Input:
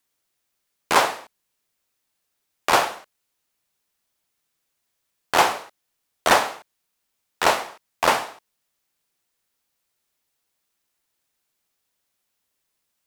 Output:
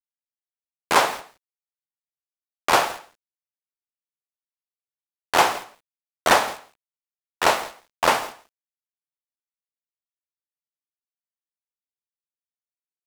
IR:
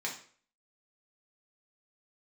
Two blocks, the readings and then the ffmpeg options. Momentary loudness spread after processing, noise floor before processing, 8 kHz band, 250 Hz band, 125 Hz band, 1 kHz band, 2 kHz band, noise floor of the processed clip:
17 LU, -77 dBFS, 0.0 dB, 0.0 dB, 0.0 dB, 0.0 dB, 0.0 dB, under -85 dBFS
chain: -af "agate=range=-33dB:threshold=-34dB:ratio=3:detection=peak,aeval=exprs='val(0)*gte(abs(val(0)),0.0188)':c=same,aecho=1:1:168:0.1"

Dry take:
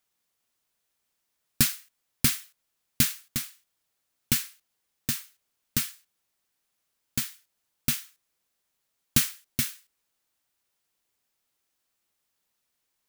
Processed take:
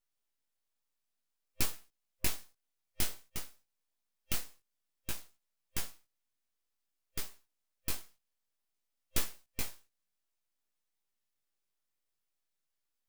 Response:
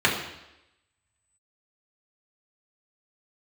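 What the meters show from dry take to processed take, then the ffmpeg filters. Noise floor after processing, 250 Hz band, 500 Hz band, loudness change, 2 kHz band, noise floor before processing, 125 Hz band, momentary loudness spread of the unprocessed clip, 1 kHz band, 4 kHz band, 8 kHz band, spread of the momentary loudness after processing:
-84 dBFS, -15.0 dB, -2.0 dB, -12.0 dB, -10.0 dB, -79 dBFS, -13.0 dB, 11 LU, -4.5 dB, -11.0 dB, -11.5 dB, 10 LU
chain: -af "superequalizer=6b=0.316:12b=2.24,aeval=exprs='abs(val(0))':c=same,flanger=delay=15:depth=7.3:speed=0.54,volume=-5dB"

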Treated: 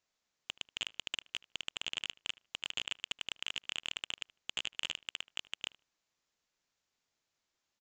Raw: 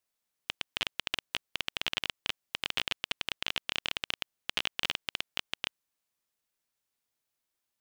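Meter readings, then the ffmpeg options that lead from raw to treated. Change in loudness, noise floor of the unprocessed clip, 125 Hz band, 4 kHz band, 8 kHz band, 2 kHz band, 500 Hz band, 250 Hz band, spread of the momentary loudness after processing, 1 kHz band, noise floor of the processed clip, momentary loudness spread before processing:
-5.0 dB, -85 dBFS, -10.0 dB, -4.5 dB, 0.0 dB, -6.5 dB, -10.0 dB, -10.0 dB, 5 LU, -10.0 dB, under -85 dBFS, 5 LU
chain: -filter_complex "[0:a]aresample=16000,asoftclip=type=tanh:threshold=-26.5dB,aresample=44100,asplit=2[a][b];[b]adelay=76,lowpass=f=2.3k:p=1,volume=-20dB,asplit=2[c][d];[d]adelay=76,lowpass=f=2.3k:p=1,volume=0.18[e];[a][c][e]amix=inputs=3:normalize=0,volume=3.5dB"

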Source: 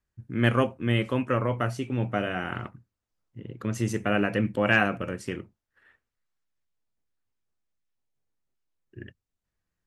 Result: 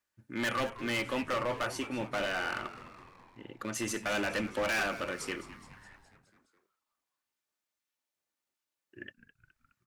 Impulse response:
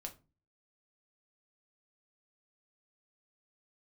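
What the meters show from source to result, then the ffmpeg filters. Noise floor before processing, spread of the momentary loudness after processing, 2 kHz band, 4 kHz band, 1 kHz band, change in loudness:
under -85 dBFS, 19 LU, -4.5 dB, -1.0 dB, -4.5 dB, -6.5 dB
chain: -filter_complex "[0:a]highpass=f=830:p=1,aecho=1:1:3.4:0.32,asplit=2[a][b];[b]alimiter=limit=-17dB:level=0:latency=1:release=166,volume=-2dB[c];[a][c]amix=inputs=2:normalize=0,volume=26dB,asoftclip=hard,volume=-26dB,asplit=7[d][e][f][g][h][i][j];[e]adelay=209,afreqshift=-120,volume=-15dB[k];[f]adelay=418,afreqshift=-240,volume=-19.3dB[l];[g]adelay=627,afreqshift=-360,volume=-23.6dB[m];[h]adelay=836,afreqshift=-480,volume=-27.9dB[n];[i]adelay=1045,afreqshift=-600,volume=-32.2dB[o];[j]adelay=1254,afreqshift=-720,volume=-36.5dB[p];[d][k][l][m][n][o][p]amix=inputs=7:normalize=0,volume=-2dB"

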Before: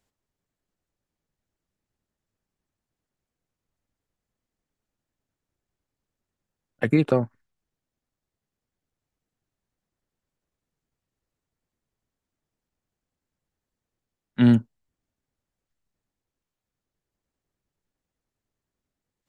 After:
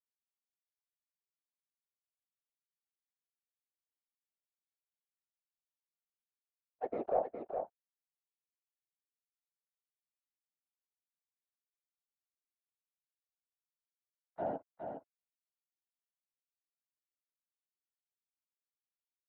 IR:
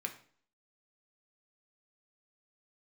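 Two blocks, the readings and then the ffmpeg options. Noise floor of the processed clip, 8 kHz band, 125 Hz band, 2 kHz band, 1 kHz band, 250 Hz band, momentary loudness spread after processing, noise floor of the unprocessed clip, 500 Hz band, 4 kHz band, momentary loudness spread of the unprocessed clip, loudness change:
under -85 dBFS, n/a, -33.0 dB, -24.5 dB, -1.0 dB, -27.0 dB, 13 LU, under -85 dBFS, -8.5 dB, under -30 dB, 15 LU, -18.0 dB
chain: -filter_complex "[0:a]highpass=f=480:w=0.5412,highpass=f=480:w=1.3066,volume=29.5dB,asoftclip=hard,volume=-29.5dB,acrusher=bits=9:mix=0:aa=0.000001,afftfilt=real='hypot(re,im)*cos(2*PI*random(0))':imag='hypot(re,im)*sin(2*PI*random(1))':win_size=512:overlap=0.75,lowpass=f=700:t=q:w=4.9,asplit=2[a][b];[b]aecho=0:1:413:0.473[c];[a][c]amix=inputs=2:normalize=0"

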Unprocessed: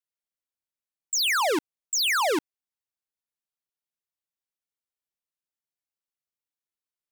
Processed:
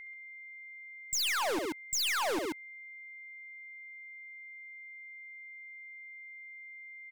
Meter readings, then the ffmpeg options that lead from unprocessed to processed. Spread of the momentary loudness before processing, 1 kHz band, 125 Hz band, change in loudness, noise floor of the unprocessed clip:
7 LU, -8.0 dB, n/a, -13.0 dB, under -85 dBFS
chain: -af "aeval=exprs='val(0)+0.00631*sin(2*PI*2100*n/s)':c=same,aecho=1:1:67.06|134.1:0.282|0.355,aeval=exprs='0.126*(cos(1*acos(clip(val(0)/0.126,-1,1)))-cos(1*PI/2))+0.00794*(cos(5*acos(clip(val(0)/0.126,-1,1)))-cos(5*PI/2))':c=same,acompressor=threshold=-27dB:ratio=2.5,lowshelf=f=61:g=10.5,aeval=exprs='clip(val(0),-1,0.0355)':c=same,volume=-3dB"

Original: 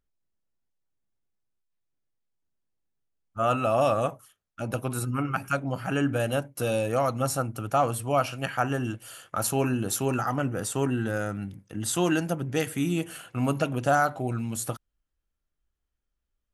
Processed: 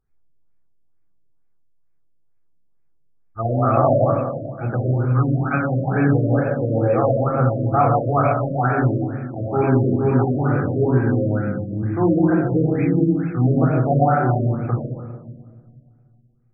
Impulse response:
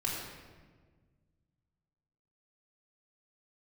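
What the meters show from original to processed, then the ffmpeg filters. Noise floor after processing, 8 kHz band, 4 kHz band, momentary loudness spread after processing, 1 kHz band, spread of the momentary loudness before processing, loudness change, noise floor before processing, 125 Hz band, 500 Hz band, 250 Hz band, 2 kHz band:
-57 dBFS, under -40 dB, under -40 dB, 8 LU, +6.5 dB, 9 LU, +8.5 dB, -82 dBFS, +12.5 dB, +7.5 dB, +9.5 dB, +2.5 dB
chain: -filter_complex "[1:a]atrim=start_sample=2205[a];[0:a][a]afir=irnorm=-1:irlink=0,afftfilt=real='re*lt(b*sr/1024,660*pow(2600/660,0.5+0.5*sin(2*PI*2.2*pts/sr)))':imag='im*lt(b*sr/1024,660*pow(2600/660,0.5+0.5*sin(2*PI*2.2*pts/sr)))':win_size=1024:overlap=0.75,volume=3dB"

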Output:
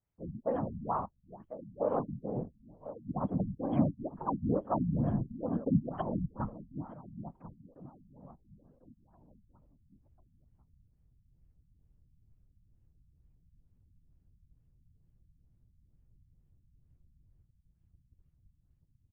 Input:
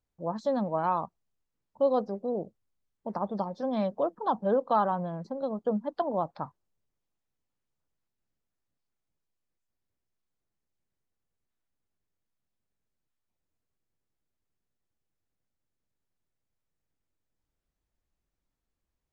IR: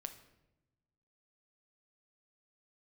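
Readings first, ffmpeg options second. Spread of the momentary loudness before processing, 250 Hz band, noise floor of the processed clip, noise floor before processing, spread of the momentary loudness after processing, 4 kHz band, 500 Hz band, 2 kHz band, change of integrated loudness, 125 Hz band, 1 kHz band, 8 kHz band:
10 LU, +0.5 dB, -71 dBFS, -85 dBFS, 18 LU, under -15 dB, -7.5 dB, under -10 dB, -5.0 dB, +6.5 dB, -8.0 dB, n/a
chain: -filter_complex "[0:a]asubboost=boost=12:cutoff=120,asplit=2[a][b];[b]adelay=1047,lowpass=f=2.7k:p=1,volume=-13dB,asplit=2[c][d];[d]adelay=1047,lowpass=f=2.7k:p=1,volume=0.38,asplit=2[e][f];[f]adelay=1047,lowpass=f=2.7k:p=1,volume=0.38,asplit=2[g][h];[h]adelay=1047,lowpass=f=2.7k:p=1,volume=0.38[i];[a][c][e][g][i]amix=inputs=5:normalize=0,afftfilt=real='hypot(re,im)*cos(2*PI*random(0))':imag='hypot(re,im)*sin(2*PI*random(1))':win_size=512:overlap=0.75,afftfilt=real='re*lt(b*sr/1024,240*pow(3400/240,0.5+0.5*sin(2*PI*2.2*pts/sr)))':imag='im*lt(b*sr/1024,240*pow(3400/240,0.5+0.5*sin(2*PI*2.2*pts/sr)))':win_size=1024:overlap=0.75,volume=3dB"

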